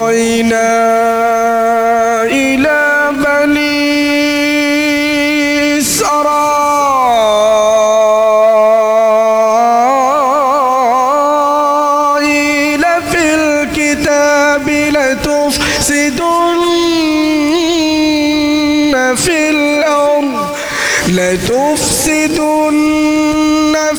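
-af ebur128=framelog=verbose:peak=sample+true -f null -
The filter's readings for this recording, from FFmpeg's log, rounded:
Integrated loudness:
  I:         -10.4 LUFS
  Threshold: -20.4 LUFS
Loudness range:
  LRA:         2.3 LU
  Threshold: -30.4 LUFS
  LRA low:   -11.3 LUFS
  LRA high:   -9.0 LUFS
Sample peak:
  Peak:       -2.8 dBFS
True peak:
  Peak:       -2.7 dBFS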